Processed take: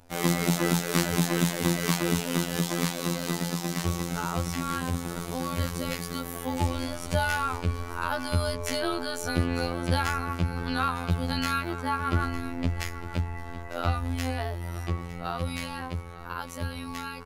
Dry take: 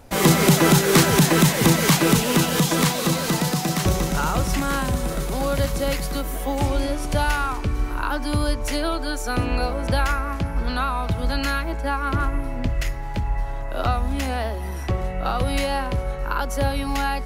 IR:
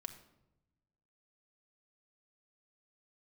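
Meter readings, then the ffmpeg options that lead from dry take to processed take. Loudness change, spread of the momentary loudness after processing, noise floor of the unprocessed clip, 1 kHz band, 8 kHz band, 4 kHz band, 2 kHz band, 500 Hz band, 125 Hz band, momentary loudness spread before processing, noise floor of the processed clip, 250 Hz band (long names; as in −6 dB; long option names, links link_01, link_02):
−7.5 dB, 9 LU, −28 dBFS, −6.5 dB, −8.5 dB, −7.5 dB, −6.5 dB, −8.5 dB, −6.5 dB, 11 LU, −38 dBFS, −7.0 dB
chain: -af "aecho=1:1:905:0.178,dynaudnorm=framelen=270:gausssize=31:maxgain=11.5dB,asoftclip=type=hard:threshold=-6dB,afftfilt=real='hypot(re,im)*cos(PI*b)':imag='0':win_size=2048:overlap=0.75,volume=-6.5dB"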